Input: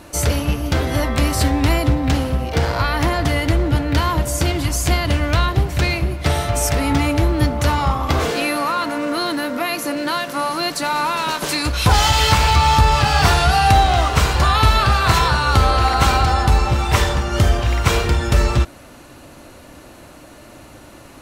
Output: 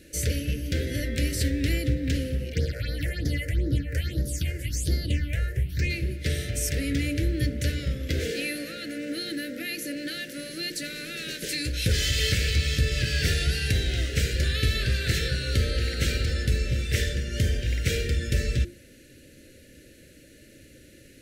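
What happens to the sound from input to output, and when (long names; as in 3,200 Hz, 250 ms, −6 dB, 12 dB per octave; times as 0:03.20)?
0:02.52–0:05.89: all-pass phaser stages 6, 3.9 Hz → 0.69 Hz, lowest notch 240–2,700 Hz
whole clip: elliptic band-stop filter 520–1,700 Hz, stop band 80 dB; mains-hum notches 50/100/150/200/250/300/350 Hz; level −7.5 dB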